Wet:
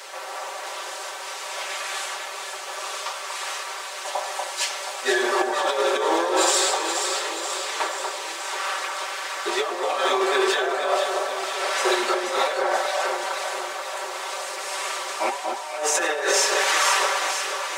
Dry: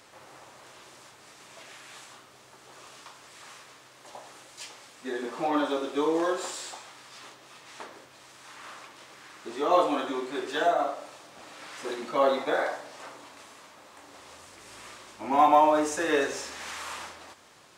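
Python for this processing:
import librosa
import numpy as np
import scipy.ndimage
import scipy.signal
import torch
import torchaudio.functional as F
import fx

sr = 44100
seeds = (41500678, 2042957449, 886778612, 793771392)

p1 = scipy.signal.sosfilt(scipy.signal.butter(4, 460.0, 'highpass', fs=sr, output='sos'), x)
p2 = p1 + 0.85 * np.pad(p1, (int(5.2 * sr / 1000.0), 0))[:len(p1)]
p3 = fx.over_compress(p2, sr, threshold_db=-34.0, ratio=-1.0)
p4 = p3 + fx.echo_alternate(p3, sr, ms=240, hz=1700.0, feedback_pct=77, wet_db=-4.0, dry=0)
y = p4 * librosa.db_to_amplitude(8.5)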